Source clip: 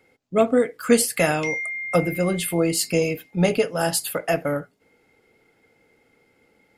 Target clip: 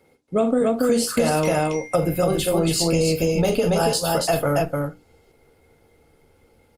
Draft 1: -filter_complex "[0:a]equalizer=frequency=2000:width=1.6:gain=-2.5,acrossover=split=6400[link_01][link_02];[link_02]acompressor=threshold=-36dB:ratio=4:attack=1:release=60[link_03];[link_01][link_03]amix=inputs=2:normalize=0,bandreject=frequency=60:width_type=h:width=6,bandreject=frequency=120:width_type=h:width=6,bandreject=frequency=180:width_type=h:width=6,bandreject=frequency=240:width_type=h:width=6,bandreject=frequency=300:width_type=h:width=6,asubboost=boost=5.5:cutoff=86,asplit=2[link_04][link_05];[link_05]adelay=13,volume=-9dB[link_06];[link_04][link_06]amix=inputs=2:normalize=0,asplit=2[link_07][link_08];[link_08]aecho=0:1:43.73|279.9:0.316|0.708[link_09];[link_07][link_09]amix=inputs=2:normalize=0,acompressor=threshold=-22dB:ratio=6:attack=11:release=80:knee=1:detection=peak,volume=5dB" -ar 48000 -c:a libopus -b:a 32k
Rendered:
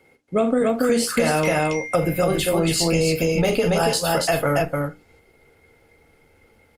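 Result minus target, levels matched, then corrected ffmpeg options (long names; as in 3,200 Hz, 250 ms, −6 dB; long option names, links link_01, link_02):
2,000 Hz band +4.5 dB
-filter_complex "[0:a]equalizer=frequency=2000:width=1.6:gain=-10.5,acrossover=split=6400[link_01][link_02];[link_02]acompressor=threshold=-36dB:ratio=4:attack=1:release=60[link_03];[link_01][link_03]amix=inputs=2:normalize=0,bandreject=frequency=60:width_type=h:width=6,bandreject=frequency=120:width_type=h:width=6,bandreject=frequency=180:width_type=h:width=6,bandreject=frequency=240:width_type=h:width=6,bandreject=frequency=300:width_type=h:width=6,asubboost=boost=5.5:cutoff=86,asplit=2[link_04][link_05];[link_05]adelay=13,volume=-9dB[link_06];[link_04][link_06]amix=inputs=2:normalize=0,asplit=2[link_07][link_08];[link_08]aecho=0:1:43.73|279.9:0.316|0.708[link_09];[link_07][link_09]amix=inputs=2:normalize=0,acompressor=threshold=-22dB:ratio=6:attack=11:release=80:knee=1:detection=peak,volume=5dB" -ar 48000 -c:a libopus -b:a 32k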